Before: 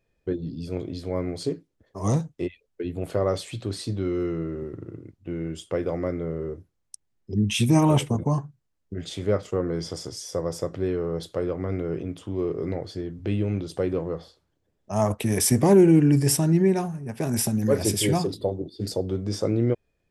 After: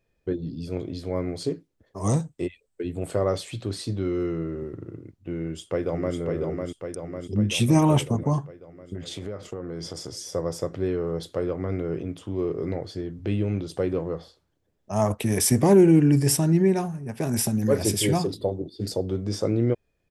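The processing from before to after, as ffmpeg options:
-filter_complex "[0:a]asettb=1/sr,asplit=3[a][b][c];[a]atrim=end=2.004[d];[b]atrim=start=2:end=3.24,asetpts=PTS-STARTPTS,afade=t=in:d=0.004:c=qsin,afade=t=out:st=1.236:d=0.004:c=qsin,equalizer=f=8.2k:t=o:w=0.25:g=13.5[e];[c]atrim=start=3.236[f];[d][e]acrossfade=d=0.004:c1=hsin:c2=qsin[g];[g][f]acrossfade=d=0.004:c1=qsin:c2=hsin,asplit=2[h][i];[i]afade=t=in:st=5.38:d=0.01,afade=t=out:st=6.17:d=0.01,aecho=0:1:550|1100|1650|2200|2750|3300|3850|4400|4950|5500:0.630957|0.410122|0.266579|0.173277|0.11263|0.0732094|0.0475861|0.030931|0.0201051|0.0130683[j];[h][j]amix=inputs=2:normalize=0,asettb=1/sr,asplit=3[k][l][m];[k]atrim=end=8.954[n];[l]atrim=start=8.95:end=10.26,asetpts=PTS-STARTPTS,afade=t=in:d=0.004:c=qsin,afade=t=out:st=1.306:d=0.004:c=qsin,acompressor=threshold=-29dB:ratio=12:attack=3.2:release=140:knee=1:detection=peak[o];[m]atrim=start=10.256[p];[n][o]acrossfade=d=0.004:c1=hsin:c2=qsin[q];[q][p]acrossfade=d=0.004:c1=qsin:c2=hsin"

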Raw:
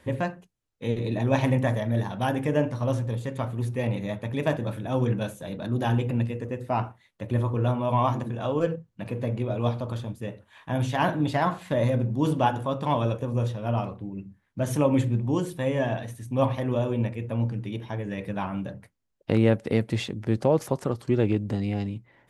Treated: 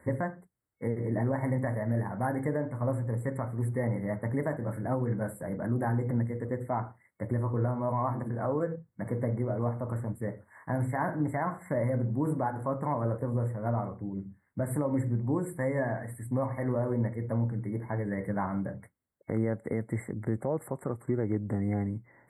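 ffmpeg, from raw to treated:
-filter_complex "[0:a]asettb=1/sr,asplit=3[a][b][c];[a]atrim=end=15.464[d];[b]atrim=start=15.46:end=16.93,asetpts=PTS-STARTPTS,afade=t=in:d=0.004:c=qsin,afade=t=out:st=1.466:d=0.004:c=qsin,equalizer=f=4.1k:w=0.77:g=8[e];[c]atrim=start=16.926[f];[d][e]acrossfade=d=0.004:c1=hsin:c2=qsin[g];[g][f]acrossfade=d=0.004:c1=qsin:c2=hsin,highpass=60,afftfilt=real='re*(1-between(b*sr/4096,2200,7400))':imag='im*(1-between(b*sr/4096,2200,7400))':win_size=4096:overlap=0.75,alimiter=limit=-19.5dB:level=0:latency=1:release=388"

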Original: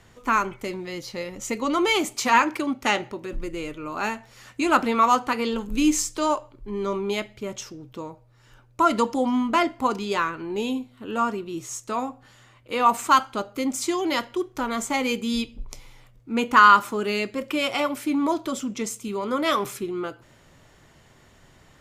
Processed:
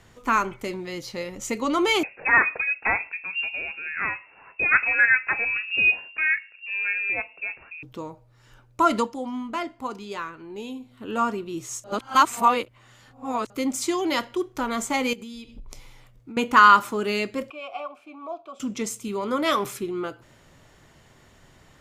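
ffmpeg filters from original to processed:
-filter_complex "[0:a]asettb=1/sr,asplit=3[a][b][c];[a]atrim=end=2.034[d];[b]atrim=start=2.03:end=7.83,asetpts=PTS-STARTPTS,afade=t=in:d=0.004:c=qsin,afade=t=out:st=5.796:d=0.004:c=qsin,lowpass=f=2.4k:t=q:w=0.5098,lowpass=f=2.4k:t=q:w=0.6013,lowpass=f=2.4k:t=q:w=0.9,lowpass=f=2.4k:t=q:w=2.563,afreqshift=-2800[e];[c]atrim=start=7.826[f];[d][e]acrossfade=d=0.004:c1=hsin:c2=qsin[g];[g][f]acrossfade=d=0.004:c1=qsin:c2=hsin,asettb=1/sr,asplit=3[h][i][j];[h]atrim=end=15.134[k];[i]atrim=start=15.13:end=16.37,asetpts=PTS-STARTPTS,afade=t=in:d=0.004:c=qsin,afade=t=out:st=1.236:d=0.004:c=qsin,acompressor=threshold=-35dB:ratio=16:attack=3.2:release=140:knee=1:detection=peak[l];[j]atrim=start=16.366[m];[k][l]acrossfade=d=0.004:c1=hsin:c2=qsin[n];[n][m]acrossfade=d=0.004:c1=qsin:c2=hsin,asettb=1/sr,asplit=3[o][p][q];[o]atrim=end=17.504[r];[p]atrim=start=17.5:end=18.6,asetpts=PTS-STARTPTS,afade=t=in:d=0.004:c=qsin,afade=t=out:st=1.096:d=0.004:c=qsin,asplit=3[s][t][u];[s]bandpass=f=730:t=q:w=8,volume=0dB[v];[t]bandpass=f=1.09k:t=q:w=8,volume=-6dB[w];[u]bandpass=f=2.44k:t=q:w=8,volume=-9dB[x];[v][w][x]amix=inputs=3:normalize=0[y];[q]atrim=start=18.596[z];[r][y]acrossfade=d=0.004:c1=hsin:c2=qsin[aa];[aa][z]acrossfade=d=0.004:c1=qsin:c2=hsin,asplit=5[ab][ac][ad][ae][af];[ab]atrim=end=9.1,asetpts=PTS-STARTPTS,afade=t=out:st=8.97:d=0.13:silence=0.375837[ag];[ac]atrim=start=9.1:end=10.79,asetpts=PTS-STARTPTS,volume=-8.5dB[ah];[ad]atrim=start=10.79:end=11.842,asetpts=PTS-STARTPTS,afade=t=in:d=0.13:silence=0.375837[ai];[ae]atrim=start=11.838:end=13.502,asetpts=PTS-STARTPTS,areverse[aj];[af]atrim=start=13.498[ak];[ag][ah][ai]concat=n=3:v=0:a=1[al];[al][aj]acrossfade=d=0.004:c1=hsin:c2=hsin[am];[am][ak]acrossfade=d=0.004:c1=hsin:c2=hsin"

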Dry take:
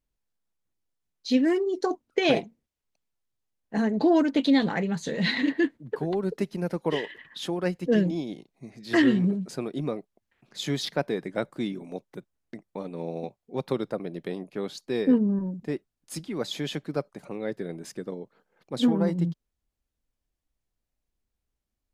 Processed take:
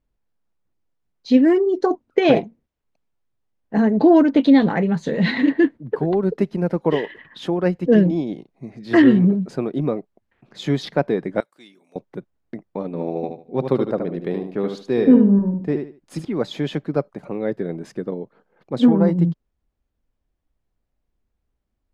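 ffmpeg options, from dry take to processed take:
-filter_complex "[0:a]asettb=1/sr,asplit=3[a][b][c];[a]atrim=end=11.404[d];[b]atrim=start=11.4:end=11.96,asetpts=PTS-STARTPTS,afade=t=in:d=0.004:c=qsin,afade=t=out:st=0.556:d=0.004:c=qsin,aderivative[e];[c]atrim=start=11.956[f];[d][e]acrossfade=d=0.004:c1=hsin:c2=qsin[g];[g][f]acrossfade=d=0.004:c1=qsin:c2=hsin,asettb=1/sr,asplit=3[h][i][j];[h]atrim=end=12.864[k];[i]atrim=start=12.86:end=16.25,asetpts=PTS-STARTPTS,afade=t=in:d=0.004:c=qsin,afade=t=out:st=3.386:d=0.004:c=qsin,aecho=1:1:75|150|225:0.473|0.118|0.0296,atrim=end_sample=149499[l];[j]atrim=start=16.246[m];[k][l]acrossfade=d=0.004:c1=hsin:c2=qsin[n];[n][m]acrossfade=d=0.004:c1=qsin:c2=hsin,lowpass=f=1.3k:p=1,volume=8.5dB"

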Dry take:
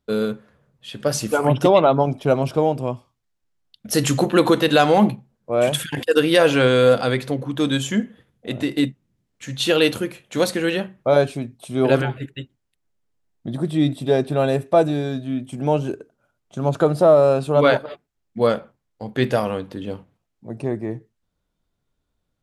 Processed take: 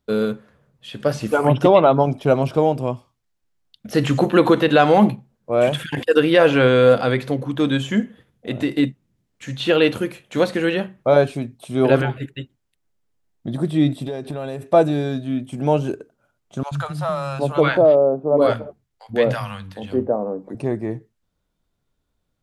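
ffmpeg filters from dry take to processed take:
-filter_complex "[0:a]asplit=3[a][b][c];[a]afade=t=out:st=14.03:d=0.02[d];[b]acompressor=threshold=-25dB:ratio=10:attack=3.2:release=140:knee=1:detection=peak,afade=t=in:st=14.03:d=0.02,afade=t=out:st=14.61:d=0.02[e];[c]afade=t=in:st=14.61:d=0.02[f];[d][e][f]amix=inputs=3:normalize=0,asettb=1/sr,asplit=3[g][h][i];[g]atrim=end=16.634[j];[h]atrim=start=16.63:end=20.55,asetpts=PTS-STARTPTS,afade=t=in:d=0.004:c=qsin,afade=t=out:st=3.916:d=0.004:c=qsin,acrossover=split=170|880[k][l][m];[k]adelay=80[n];[l]adelay=760[o];[n][o][m]amix=inputs=3:normalize=0,atrim=end_sample=172872[p];[i]atrim=start=20.546[q];[j][p]acrossfade=d=0.004:c1=hsin:c2=qsin[r];[r][q]acrossfade=d=0.004:c1=qsin:c2=hsin,acrossover=split=3400[s][t];[t]acompressor=threshold=-43dB:ratio=4:attack=1:release=60[u];[s][u]amix=inputs=2:normalize=0,volume=1.5dB"

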